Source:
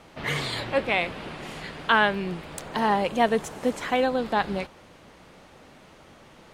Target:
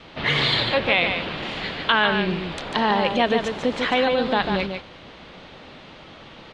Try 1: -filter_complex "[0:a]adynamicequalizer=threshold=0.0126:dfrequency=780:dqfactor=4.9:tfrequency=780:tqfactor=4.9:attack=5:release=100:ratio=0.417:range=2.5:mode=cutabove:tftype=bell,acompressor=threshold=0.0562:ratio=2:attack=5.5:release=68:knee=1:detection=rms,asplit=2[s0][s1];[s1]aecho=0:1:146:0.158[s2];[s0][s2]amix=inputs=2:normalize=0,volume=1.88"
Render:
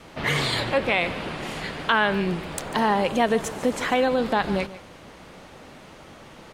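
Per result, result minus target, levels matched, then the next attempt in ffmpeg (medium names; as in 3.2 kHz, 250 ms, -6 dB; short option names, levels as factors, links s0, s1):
echo-to-direct -10 dB; 4 kHz band -4.0 dB
-filter_complex "[0:a]adynamicequalizer=threshold=0.0126:dfrequency=780:dqfactor=4.9:tfrequency=780:tqfactor=4.9:attack=5:release=100:ratio=0.417:range=2.5:mode=cutabove:tftype=bell,acompressor=threshold=0.0562:ratio=2:attack=5.5:release=68:knee=1:detection=rms,asplit=2[s0][s1];[s1]aecho=0:1:146:0.501[s2];[s0][s2]amix=inputs=2:normalize=0,volume=1.88"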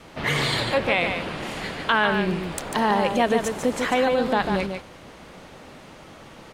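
4 kHz band -4.0 dB
-filter_complex "[0:a]adynamicequalizer=threshold=0.0126:dfrequency=780:dqfactor=4.9:tfrequency=780:tqfactor=4.9:attack=5:release=100:ratio=0.417:range=2.5:mode=cutabove:tftype=bell,acompressor=threshold=0.0562:ratio=2:attack=5.5:release=68:knee=1:detection=rms,lowpass=f=3700:t=q:w=2.1,asplit=2[s0][s1];[s1]aecho=0:1:146:0.501[s2];[s0][s2]amix=inputs=2:normalize=0,volume=1.88"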